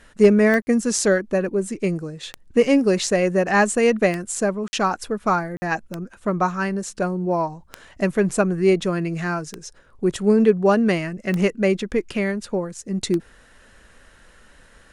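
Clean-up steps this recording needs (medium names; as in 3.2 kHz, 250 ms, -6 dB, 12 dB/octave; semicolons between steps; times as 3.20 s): clip repair -4.5 dBFS; de-click; interpolate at 0.62/4.68/5.57 s, 50 ms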